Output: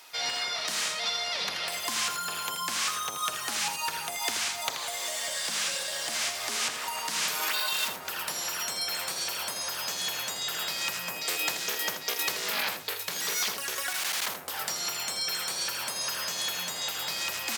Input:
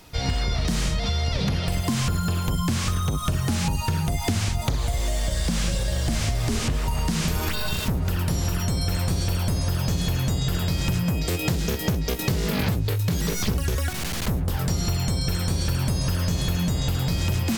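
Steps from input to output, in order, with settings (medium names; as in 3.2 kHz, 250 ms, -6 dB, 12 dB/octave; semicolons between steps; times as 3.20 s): high-pass 920 Hz 12 dB/octave; on a send: delay 81 ms -9 dB; on the sum: trim +1.5 dB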